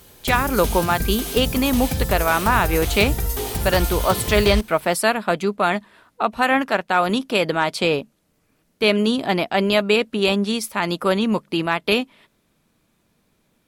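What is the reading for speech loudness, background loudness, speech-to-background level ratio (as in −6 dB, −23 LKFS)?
−20.5 LKFS, −25.0 LKFS, 4.5 dB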